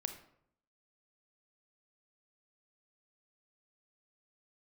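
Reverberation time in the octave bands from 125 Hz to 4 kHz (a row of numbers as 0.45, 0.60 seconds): 0.80, 0.80, 0.70, 0.65, 0.55, 0.45 seconds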